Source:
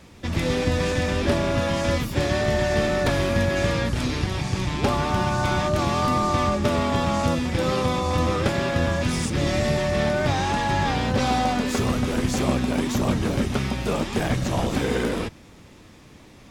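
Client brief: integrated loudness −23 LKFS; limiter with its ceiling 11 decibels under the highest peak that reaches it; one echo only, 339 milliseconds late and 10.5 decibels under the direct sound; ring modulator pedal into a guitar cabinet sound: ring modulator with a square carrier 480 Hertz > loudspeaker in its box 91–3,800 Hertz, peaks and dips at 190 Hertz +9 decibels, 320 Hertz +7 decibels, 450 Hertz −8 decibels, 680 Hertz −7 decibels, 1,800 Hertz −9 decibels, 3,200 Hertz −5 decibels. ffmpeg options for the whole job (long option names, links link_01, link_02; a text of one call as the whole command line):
ffmpeg -i in.wav -af "alimiter=limit=-22dB:level=0:latency=1,aecho=1:1:339:0.299,aeval=exprs='val(0)*sgn(sin(2*PI*480*n/s))':channel_layout=same,highpass=91,equalizer=frequency=190:width_type=q:width=4:gain=9,equalizer=frequency=320:width_type=q:width=4:gain=7,equalizer=frequency=450:width_type=q:width=4:gain=-8,equalizer=frequency=680:width_type=q:width=4:gain=-7,equalizer=frequency=1800:width_type=q:width=4:gain=-9,equalizer=frequency=3200:width_type=q:width=4:gain=-5,lowpass=frequency=3800:width=0.5412,lowpass=frequency=3800:width=1.3066,volume=7.5dB" out.wav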